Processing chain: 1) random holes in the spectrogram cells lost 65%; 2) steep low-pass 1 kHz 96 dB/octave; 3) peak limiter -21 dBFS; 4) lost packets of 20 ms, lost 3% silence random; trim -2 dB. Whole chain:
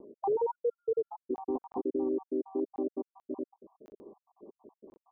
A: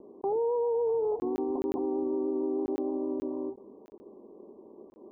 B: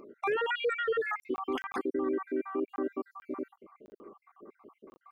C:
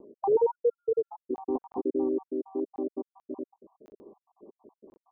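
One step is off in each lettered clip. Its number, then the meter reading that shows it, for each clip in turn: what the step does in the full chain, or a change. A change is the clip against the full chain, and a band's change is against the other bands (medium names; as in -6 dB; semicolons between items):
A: 1, crest factor change -3.5 dB; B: 2, loudness change +1.0 LU; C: 3, crest factor change +5.0 dB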